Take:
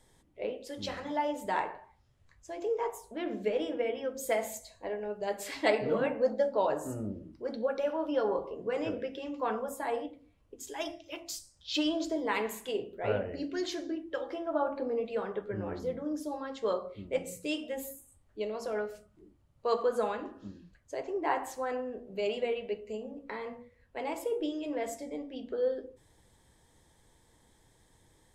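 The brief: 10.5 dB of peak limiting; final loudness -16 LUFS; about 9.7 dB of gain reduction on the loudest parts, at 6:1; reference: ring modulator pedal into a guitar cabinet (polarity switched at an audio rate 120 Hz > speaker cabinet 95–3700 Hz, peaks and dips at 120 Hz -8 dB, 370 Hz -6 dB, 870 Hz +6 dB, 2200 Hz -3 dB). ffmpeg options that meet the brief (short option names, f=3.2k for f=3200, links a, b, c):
-af "acompressor=threshold=-33dB:ratio=6,alimiter=level_in=9.5dB:limit=-24dB:level=0:latency=1,volume=-9.5dB,aeval=exprs='val(0)*sgn(sin(2*PI*120*n/s))':c=same,highpass=95,equalizer=f=120:t=q:w=4:g=-8,equalizer=f=370:t=q:w=4:g=-6,equalizer=f=870:t=q:w=4:g=6,equalizer=f=2.2k:t=q:w=4:g=-3,lowpass=f=3.7k:w=0.5412,lowpass=f=3.7k:w=1.3066,volume=27dB"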